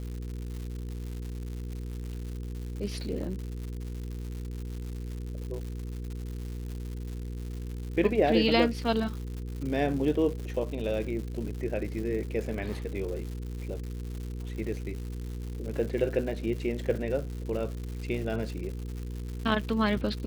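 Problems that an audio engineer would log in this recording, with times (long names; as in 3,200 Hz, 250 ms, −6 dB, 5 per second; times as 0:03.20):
surface crackle 220 per second −37 dBFS
mains hum 60 Hz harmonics 8 −36 dBFS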